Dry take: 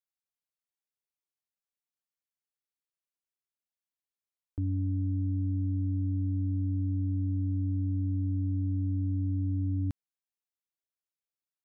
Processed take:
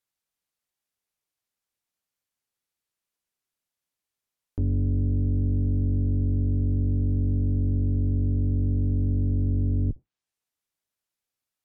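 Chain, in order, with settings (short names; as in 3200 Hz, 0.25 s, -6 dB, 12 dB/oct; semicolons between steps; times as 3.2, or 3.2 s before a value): octaver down 1 oct, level -3 dB; treble ducked by the level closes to 300 Hz, closed at -26.5 dBFS; core saturation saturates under 89 Hz; gain +7.5 dB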